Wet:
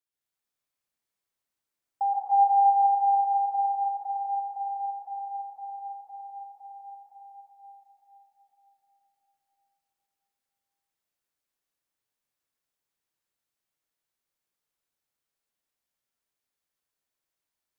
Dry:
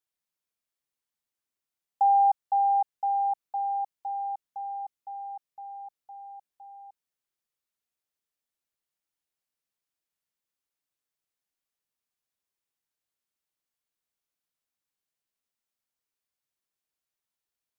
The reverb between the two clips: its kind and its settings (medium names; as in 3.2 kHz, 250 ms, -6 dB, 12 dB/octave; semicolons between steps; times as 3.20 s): plate-style reverb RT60 4.6 s, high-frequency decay 0.55×, pre-delay 110 ms, DRR -7.5 dB; trim -5 dB